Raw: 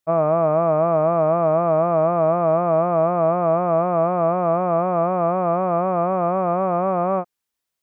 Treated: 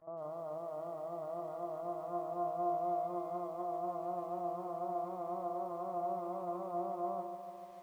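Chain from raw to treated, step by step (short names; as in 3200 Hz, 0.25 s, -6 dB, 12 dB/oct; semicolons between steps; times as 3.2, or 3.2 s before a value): LPF 1100 Hz 24 dB/oct; bell 60 Hz +8.5 dB 0.67 oct; de-hum 78.55 Hz, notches 14; pre-echo 51 ms -21 dB; on a send at -17 dB: reverb RT60 1.1 s, pre-delay 3 ms; on the sum: limiter -18 dBFS, peak gain reduction 10.5 dB; low shelf 300 Hz -8.5 dB; upward compressor, threshold -43 dBFS; resonator 350 Hz, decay 0.82 s, mix 90%; lo-fi delay 0.147 s, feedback 80%, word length 11-bit, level -11 dB; gain +3 dB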